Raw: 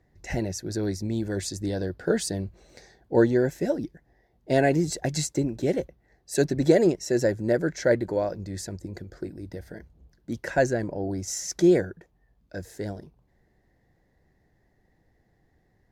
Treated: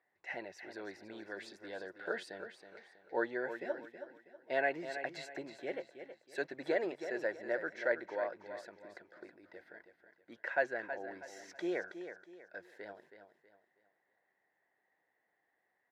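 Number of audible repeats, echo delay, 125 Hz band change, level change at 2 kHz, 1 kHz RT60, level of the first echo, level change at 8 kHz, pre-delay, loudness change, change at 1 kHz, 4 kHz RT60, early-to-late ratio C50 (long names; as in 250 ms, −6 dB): 3, 322 ms, −32.5 dB, −4.0 dB, no reverb audible, −10.0 dB, below −25 dB, no reverb audible, −13.5 dB, −8.0 dB, no reverb audible, no reverb audible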